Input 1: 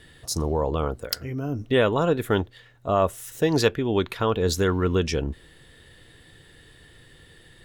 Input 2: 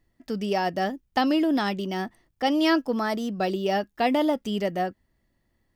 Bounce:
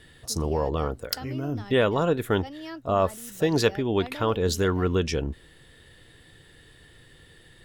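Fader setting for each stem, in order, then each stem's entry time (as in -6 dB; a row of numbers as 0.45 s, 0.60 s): -1.5 dB, -17.5 dB; 0.00 s, 0.00 s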